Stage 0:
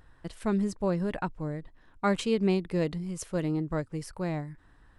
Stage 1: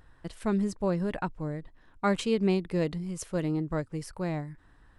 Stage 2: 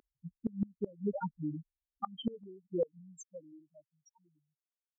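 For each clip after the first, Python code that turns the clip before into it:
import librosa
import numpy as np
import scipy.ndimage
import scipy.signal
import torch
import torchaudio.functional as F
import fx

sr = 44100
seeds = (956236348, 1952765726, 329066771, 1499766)

y1 = x
y2 = fx.spec_topn(y1, sr, count=2)
y2 = fx.filter_sweep_highpass(y2, sr, from_hz=310.0, to_hz=2400.0, start_s=2.47, end_s=3.79, q=1.1)
y2 = fx.gate_flip(y2, sr, shuts_db=-29.0, range_db=-26)
y2 = F.gain(torch.from_numpy(y2), 7.0).numpy()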